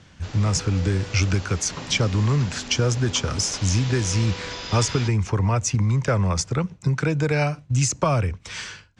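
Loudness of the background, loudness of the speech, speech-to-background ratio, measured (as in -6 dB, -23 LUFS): -35.0 LUFS, -23.0 LUFS, 12.0 dB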